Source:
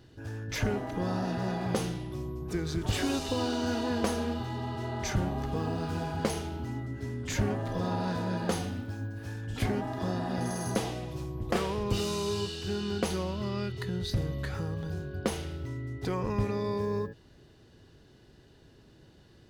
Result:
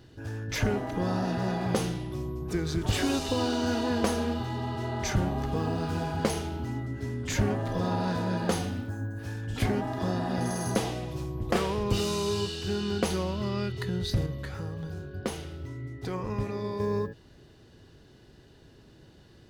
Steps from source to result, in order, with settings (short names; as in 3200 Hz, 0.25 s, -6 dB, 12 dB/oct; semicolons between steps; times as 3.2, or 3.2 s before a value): 8.89–9.19 spectral gain 2000–6000 Hz -10 dB; 14.26–16.8 flange 1.8 Hz, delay 5.8 ms, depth 6.3 ms, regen +75%; gain +2.5 dB